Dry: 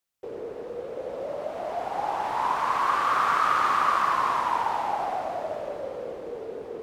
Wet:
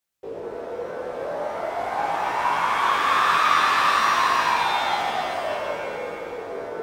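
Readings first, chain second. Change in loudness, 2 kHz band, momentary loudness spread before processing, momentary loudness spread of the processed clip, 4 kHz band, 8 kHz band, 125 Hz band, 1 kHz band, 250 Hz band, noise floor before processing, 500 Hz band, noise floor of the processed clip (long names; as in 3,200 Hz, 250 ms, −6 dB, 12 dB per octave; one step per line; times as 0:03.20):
+4.0 dB, +8.0 dB, 14 LU, 15 LU, +12.0 dB, +9.0 dB, +3.5 dB, +3.0 dB, +3.5 dB, −40 dBFS, +3.0 dB, −35 dBFS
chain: chorus effect 0.42 Hz, delay 16.5 ms, depth 7.8 ms
reverb with rising layers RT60 1.3 s, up +7 semitones, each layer −2 dB, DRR 4.5 dB
level +4.5 dB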